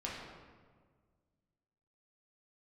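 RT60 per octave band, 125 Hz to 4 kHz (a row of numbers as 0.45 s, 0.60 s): 2.3 s, 2.1 s, 1.8 s, 1.5 s, 1.2 s, 0.95 s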